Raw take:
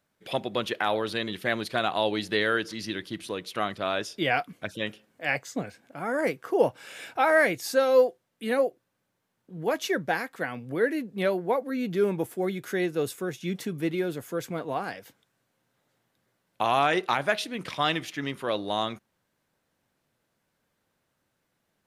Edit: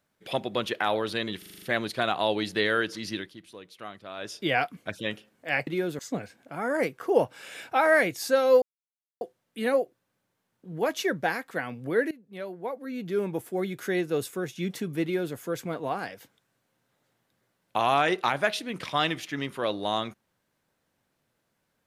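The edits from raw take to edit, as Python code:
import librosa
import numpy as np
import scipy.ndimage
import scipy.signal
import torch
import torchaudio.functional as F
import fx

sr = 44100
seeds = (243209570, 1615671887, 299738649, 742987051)

y = fx.edit(x, sr, fx.stutter(start_s=1.38, slice_s=0.04, count=7),
    fx.fade_down_up(start_s=2.93, length_s=1.17, db=-12.0, fade_s=0.23, curve='qua'),
    fx.insert_silence(at_s=8.06, length_s=0.59),
    fx.fade_in_from(start_s=10.96, length_s=1.68, floor_db=-20.0),
    fx.duplicate(start_s=13.88, length_s=0.32, to_s=5.43), tone=tone)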